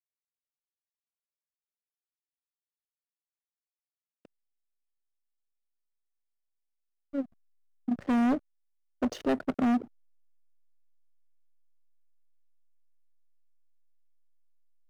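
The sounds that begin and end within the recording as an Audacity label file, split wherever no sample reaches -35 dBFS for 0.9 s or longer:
7.140000	9.820000	sound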